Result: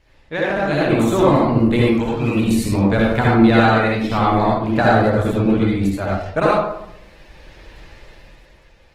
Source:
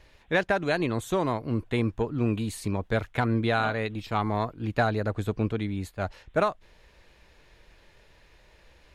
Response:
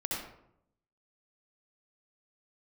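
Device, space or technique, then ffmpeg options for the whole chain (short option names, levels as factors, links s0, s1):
speakerphone in a meeting room: -filter_complex "[0:a]asplit=3[s0][s1][s2];[s0]afade=t=out:st=1.82:d=0.02[s3];[s1]tiltshelf=f=1300:g=-7.5,afade=t=in:st=1.82:d=0.02,afade=t=out:st=2.34:d=0.02[s4];[s2]afade=t=in:st=2.34:d=0.02[s5];[s3][s4][s5]amix=inputs=3:normalize=0[s6];[1:a]atrim=start_sample=2205[s7];[s6][s7]afir=irnorm=-1:irlink=0,dynaudnorm=f=130:g=13:m=3.55" -ar 48000 -c:a libopus -b:a 16k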